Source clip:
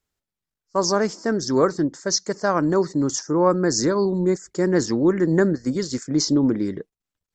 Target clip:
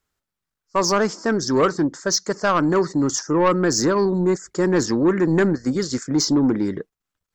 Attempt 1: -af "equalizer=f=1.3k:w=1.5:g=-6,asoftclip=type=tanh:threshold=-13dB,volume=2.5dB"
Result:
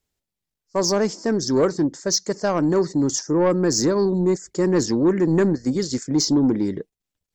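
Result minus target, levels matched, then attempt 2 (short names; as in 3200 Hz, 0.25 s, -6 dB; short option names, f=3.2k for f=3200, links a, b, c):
1000 Hz band -5.5 dB
-af "equalizer=f=1.3k:w=1.5:g=5.5,asoftclip=type=tanh:threshold=-13dB,volume=2.5dB"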